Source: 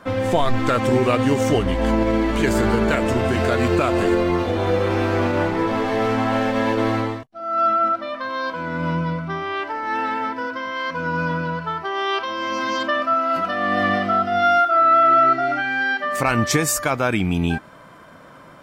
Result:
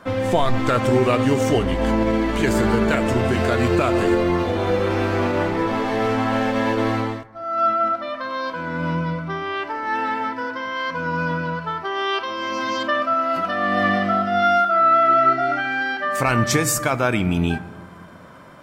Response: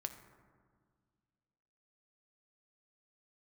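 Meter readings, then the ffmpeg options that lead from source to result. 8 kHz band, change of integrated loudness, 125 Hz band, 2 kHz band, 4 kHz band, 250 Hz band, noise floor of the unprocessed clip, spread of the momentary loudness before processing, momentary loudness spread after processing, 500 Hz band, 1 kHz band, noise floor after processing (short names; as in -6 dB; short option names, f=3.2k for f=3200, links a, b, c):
0.0 dB, -0.5 dB, +0.5 dB, -0.5 dB, 0.0 dB, 0.0 dB, -45 dBFS, 9 LU, 9 LU, 0.0 dB, -0.5 dB, -39 dBFS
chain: -filter_complex "[0:a]asplit=2[a][b];[1:a]atrim=start_sample=2205[c];[b][c]afir=irnorm=-1:irlink=0,volume=2.5dB[d];[a][d]amix=inputs=2:normalize=0,volume=-6dB"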